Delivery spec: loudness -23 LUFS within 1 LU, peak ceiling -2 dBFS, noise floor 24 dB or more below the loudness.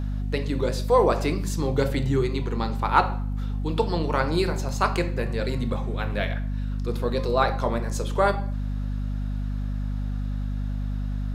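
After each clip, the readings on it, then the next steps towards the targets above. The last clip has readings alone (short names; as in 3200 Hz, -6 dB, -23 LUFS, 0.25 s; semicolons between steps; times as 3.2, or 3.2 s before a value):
hum 50 Hz; harmonics up to 250 Hz; hum level -25 dBFS; loudness -26.0 LUFS; peak -3.5 dBFS; loudness target -23.0 LUFS
-> notches 50/100/150/200/250 Hz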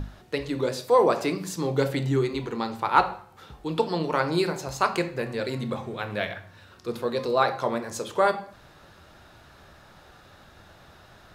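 hum none; loudness -26.5 LUFS; peak -4.5 dBFS; loudness target -23.0 LUFS
-> gain +3.5 dB; limiter -2 dBFS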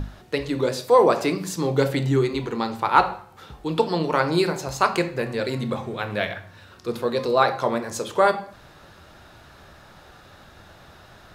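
loudness -23.0 LUFS; peak -2.0 dBFS; noise floor -49 dBFS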